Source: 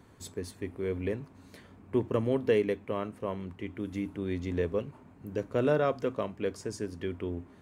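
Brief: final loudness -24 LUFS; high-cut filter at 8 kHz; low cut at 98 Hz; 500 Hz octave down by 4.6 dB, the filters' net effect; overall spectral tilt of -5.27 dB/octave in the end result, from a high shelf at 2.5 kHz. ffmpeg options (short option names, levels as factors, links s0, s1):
-af "highpass=98,lowpass=8000,equalizer=f=500:t=o:g=-5.5,highshelf=f=2500:g=-3.5,volume=3.98"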